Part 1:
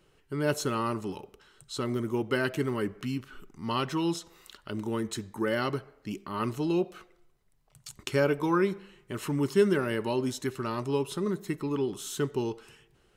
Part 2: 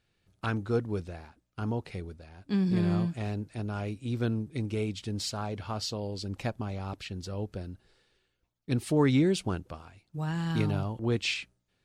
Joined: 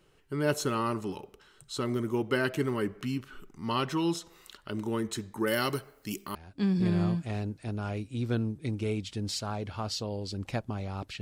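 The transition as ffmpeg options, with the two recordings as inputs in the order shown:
-filter_complex "[0:a]asplit=3[a][b][c];[a]afade=t=out:st=5.46:d=0.02[d];[b]aemphasis=mode=production:type=75fm,afade=t=in:st=5.46:d=0.02,afade=t=out:st=6.35:d=0.02[e];[c]afade=t=in:st=6.35:d=0.02[f];[d][e][f]amix=inputs=3:normalize=0,apad=whole_dur=11.21,atrim=end=11.21,atrim=end=6.352[g];[1:a]atrim=start=2.258:end=7.12[h];[g][h]acrossfade=d=0.004:c1=hsin:c2=hsin"

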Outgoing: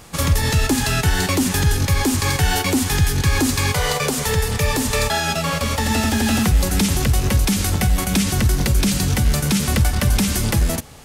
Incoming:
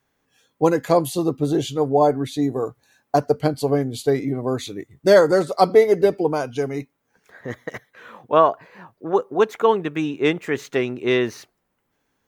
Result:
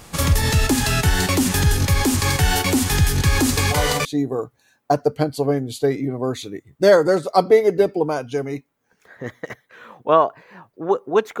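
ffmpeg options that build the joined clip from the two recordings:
-filter_complex "[1:a]asplit=2[a][b];[0:a]apad=whole_dur=11.4,atrim=end=11.4,atrim=end=4.052[c];[b]atrim=start=2.288:end=9.64[d];[a]atrim=start=1.81:end=2.29,asetpts=PTS-STARTPTS,volume=-9dB,afade=t=in:d=0.004:c=hsin,afade=t=out:st=0.476:d=0.004:c=hsin,adelay=157437S[e];[c][d]acrossfade=d=0.004:c1=hsin:c2=hsin[f];[f][e]amix=inputs=2:normalize=0"

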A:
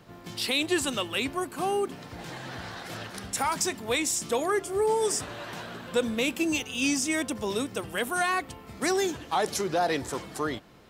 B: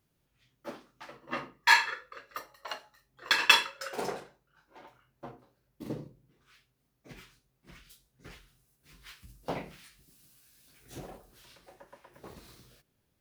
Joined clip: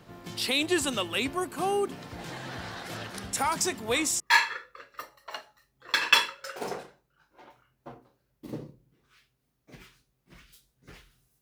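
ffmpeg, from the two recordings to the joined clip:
-filter_complex "[1:a]asplit=2[a][b];[0:a]apad=whole_dur=11.41,atrim=end=11.41,atrim=end=4.202[c];[b]atrim=start=1.568:end=8.78[d];[a]atrim=start=0.94:end=1.57,asetpts=PTS-STARTPTS,volume=-6.5dB,afade=t=in:d=0.004:c=hsin,afade=t=out:st=0.626:d=0.004:c=hsin,adelay=157437S[e];[c][d]acrossfade=d=0.004:c1=hsin:c2=hsin[f];[f][e]amix=inputs=2:normalize=0"

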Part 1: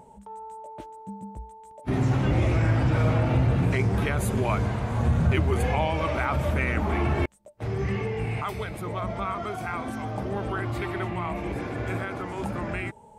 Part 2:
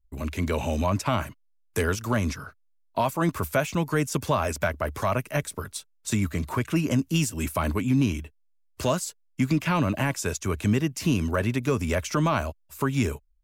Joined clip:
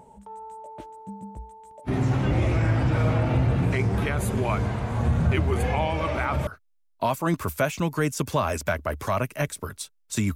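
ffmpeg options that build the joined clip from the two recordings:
-filter_complex "[0:a]apad=whole_dur=10.35,atrim=end=10.35,atrim=end=6.472[a];[1:a]atrim=start=2.418:end=6.3[b];[a][b]acrossfade=d=0.004:c1=hsin:c2=hsin"

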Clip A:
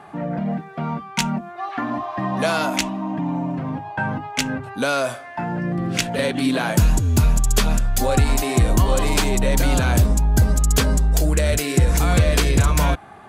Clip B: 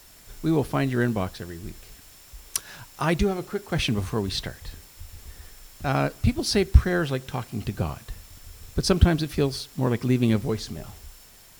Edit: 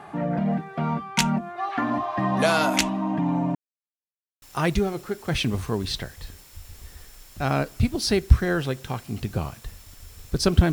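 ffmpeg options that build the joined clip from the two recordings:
-filter_complex "[0:a]apad=whole_dur=10.72,atrim=end=10.72,asplit=2[a][b];[a]atrim=end=3.55,asetpts=PTS-STARTPTS,afade=t=out:st=3.546:d=0.004:c=hsin[c];[b]atrim=start=3.55:end=4.42,asetpts=PTS-STARTPTS,volume=0[d];[1:a]atrim=start=2.86:end=9.16,asetpts=PTS-STARTPTS,afade=t=in:d=0.004:c=hsin[e];[c][d][e]concat=n=3:v=0:a=1"

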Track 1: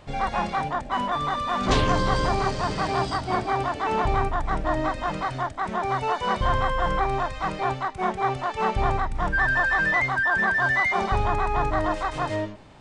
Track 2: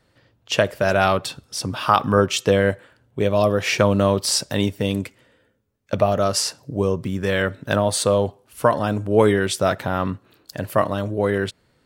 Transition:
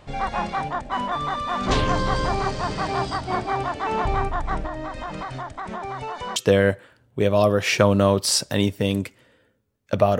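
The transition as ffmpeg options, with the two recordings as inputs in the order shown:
-filter_complex "[0:a]asettb=1/sr,asplit=3[a][b][c];[a]atrim=end=4.664[d];[b]atrim=start=4.66:end=6.36,asetpts=PTS-STARTPTS,afade=t=in:d=0.004:c=qsin,afade=t=out:st=1.696:d=0.004:c=qsin,acompressor=threshold=-27dB:ratio=5:attack=3.2:release=140:knee=1:detection=peak[e];[c]atrim=start=6.356[f];[d][e]acrossfade=d=0.004:c1=hsin:c2=qsin[g];[g][f]acrossfade=d=0.004:c1=qsin:c2=hsin,apad=whole_dur=10.19,atrim=end=10.19,atrim=end=6.362[h];[1:a]atrim=start=2.358:end=6.19[i];[h][i]acrossfade=d=0.004:c1=hsin:c2=hsin"

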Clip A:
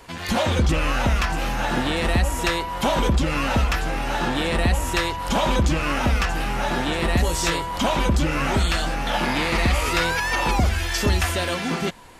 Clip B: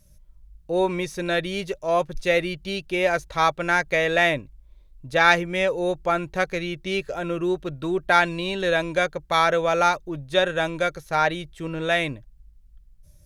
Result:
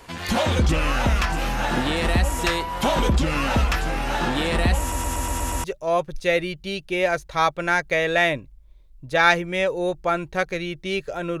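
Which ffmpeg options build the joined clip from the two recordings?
-filter_complex "[0:a]apad=whole_dur=11.4,atrim=end=11.4,asplit=7[a][b][c][d][e][f][g];[a]atrim=end=4.922[h];[b]atrim=start=4.798:end=4.922[i];[c]atrim=start=4.798:end=4.922[j];[d]atrim=start=4.798:end=4.922[k];[e]atrim=start=4.798:end=4.922[l];[f]atrim=start=4.798:end=4.922[m];[g]atrim=start=4.798:end=4.922[n];[1:a]atrim=start=1.648:end=7.41[o];[h][i]acrossfade=d=0.004:c1=hsin:c2=hsin[p];[p][j]acrossfade=d=0.004:c1=hsin:c2=hsin[q];[q][k]acrossfade=d=0.004:c1=hsin:c2=hsin[r];[r][l]acrossfade=d=0.004:c1=hsin:c2=hsin[s];[s][m]acrossfade=d=0.004:c1=hsin:c2=hsin[t];[t][n]acrossfade=d=0.004:c1=hsin:c2=hsin[u];[u][o]acrossfade=d=0.004:c1=hsin:c2=hsin"

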